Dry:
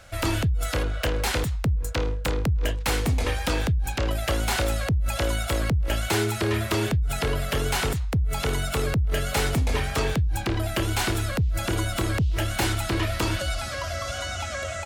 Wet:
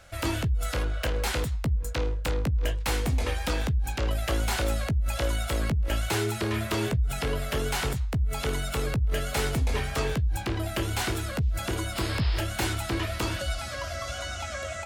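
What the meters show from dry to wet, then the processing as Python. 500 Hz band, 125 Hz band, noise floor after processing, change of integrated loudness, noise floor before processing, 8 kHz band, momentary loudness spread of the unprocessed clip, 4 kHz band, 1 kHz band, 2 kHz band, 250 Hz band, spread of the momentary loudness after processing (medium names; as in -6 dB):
-3.0 dB, -3.0 dB, -35 dBFS, -3.0 dB, -32 dBFS, -3.5 dB, 3 LU, -3.5 dB, -3.5 dB, -3.5 dB, -3.5 dB, 3 LU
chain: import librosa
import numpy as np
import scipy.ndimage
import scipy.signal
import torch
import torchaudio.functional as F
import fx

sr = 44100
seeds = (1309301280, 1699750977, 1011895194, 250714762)

y = fx.chorus_voices(x, sr, voices=4, hz=0.55, base_ms=16, depth_ms=2.5, mix_pct=25)
y = fx.spec_paint(y, sr, seeds[0], shape='noise', start_s=11.95, length_s=0.46, low_hz=310.0, high_hz=5400.0, level_db=-37.0)
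y = y * 10.0 ** (-1.5 / 20.0)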